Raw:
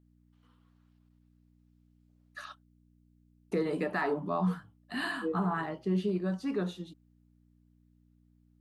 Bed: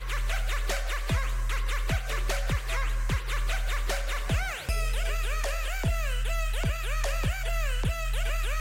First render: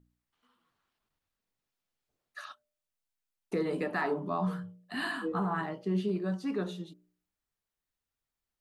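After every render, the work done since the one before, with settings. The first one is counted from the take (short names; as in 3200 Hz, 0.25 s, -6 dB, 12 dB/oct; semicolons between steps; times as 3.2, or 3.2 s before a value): de-hum 60 Hz, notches 10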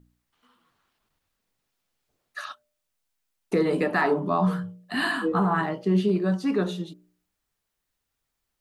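gain +8.5 dB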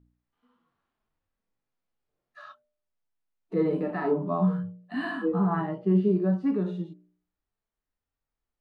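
LPF 1200 Hz 6 dB/oct; harmonic-percussive split percussive -18 dB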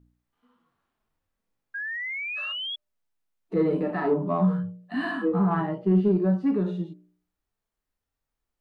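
1.74–2.76 painted sound rise 1600–3400 Hz -35 dBFS; in parallel at -8 dB: soft clip -24 dBFS, distortion -11 dB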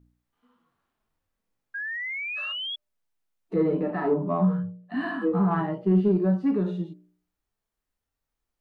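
3.56–5.22 high shelf 3300 Hz -9.5 dB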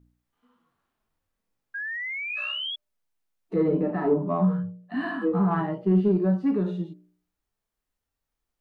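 2.26–2.71 flutter echo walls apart 5.5 m, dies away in 0.28 s; 3.68–4.18 tilt shelf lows +3.5 dB, about 660 Hz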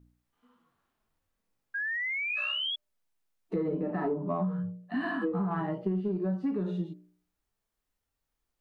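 compressor 12:1, threshold -27 dBFS, peak gain reduction 11.5 dB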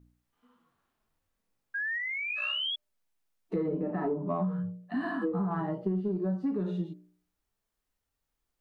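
1.98–2.43 AM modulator 52 Hz, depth 25%; 3.66–4.27 high shelf 2200 Hz -7 dB; 4.93–6.6 bell 2500 Hz -7 dB 0.94 oct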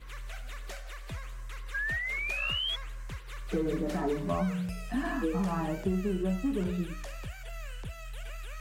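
add bed -12.5 dB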